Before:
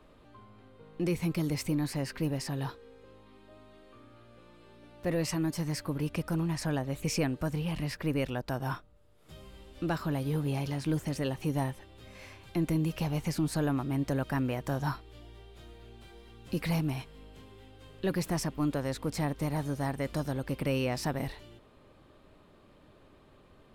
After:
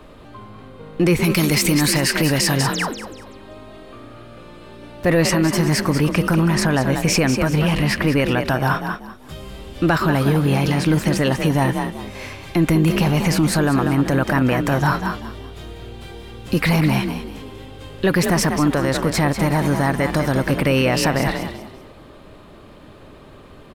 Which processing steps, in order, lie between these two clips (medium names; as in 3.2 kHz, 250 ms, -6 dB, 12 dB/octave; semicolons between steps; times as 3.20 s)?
1.24–2.56 s: treble shelf 2.2 kHz +11.5 dB; 2.73–2.94 s: painted sound fall 200–9200 Hz -43 dBFS; on a send: frequency-shifting echo 192 ms, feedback 34%, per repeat +39 Hz, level -9 dB; on the sum: dynamic bell 1.6 kHz, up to +6 dB, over -50 dBFS, Q 0.84; loudness maximiser +22 dB; trim -7 dB